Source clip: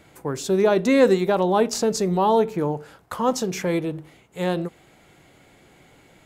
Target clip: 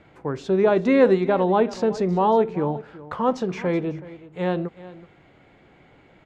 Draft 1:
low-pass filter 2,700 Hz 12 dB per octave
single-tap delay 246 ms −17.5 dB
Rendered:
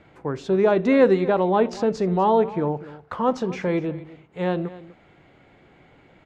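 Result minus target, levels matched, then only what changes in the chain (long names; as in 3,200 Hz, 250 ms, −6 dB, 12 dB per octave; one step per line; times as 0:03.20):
echo 129 ms early
change: single-tap delay 375 ms −17.5 dB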